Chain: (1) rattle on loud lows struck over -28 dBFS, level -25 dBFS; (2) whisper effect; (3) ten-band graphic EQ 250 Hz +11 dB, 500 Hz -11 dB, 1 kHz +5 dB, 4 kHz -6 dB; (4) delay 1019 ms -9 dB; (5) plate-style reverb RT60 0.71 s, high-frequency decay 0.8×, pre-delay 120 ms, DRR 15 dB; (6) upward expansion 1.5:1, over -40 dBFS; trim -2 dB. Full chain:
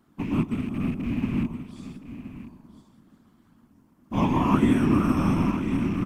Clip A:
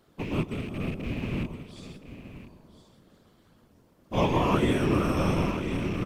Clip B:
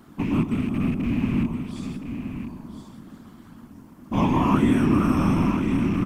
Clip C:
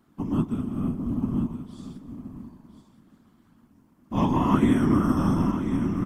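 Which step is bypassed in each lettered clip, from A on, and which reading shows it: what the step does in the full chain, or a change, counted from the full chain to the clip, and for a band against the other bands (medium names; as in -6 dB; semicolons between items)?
3, 250 Hz band -7.5 dB; 6, momentary loudness spread change -5 LU; 1, 2 kHz band -4.0 dB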